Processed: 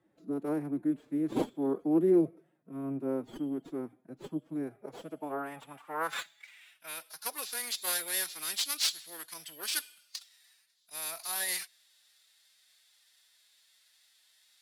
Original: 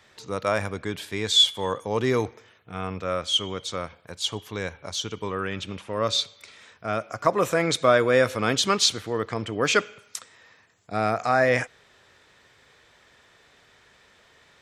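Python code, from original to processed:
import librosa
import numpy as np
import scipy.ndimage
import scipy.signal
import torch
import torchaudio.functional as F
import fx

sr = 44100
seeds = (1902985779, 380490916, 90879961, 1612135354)

y = fx.tracing_dist(x, sr, depth_ms=0.31)
y = (np.kron(y[::4], np.eye(4)[0]) * 4)[:len(y)]
y = fx.low_shelf(y, sr, hz=80.0, db=6.5)
y = fx.pitch_keep_formants(y, sr, semitones=6.5)
y = fx.filter_sweep_bandpass(y, sr, from_hz=310.0, to_hz=4400.0, start_s=4.56, end_s=7.15, q=2.6)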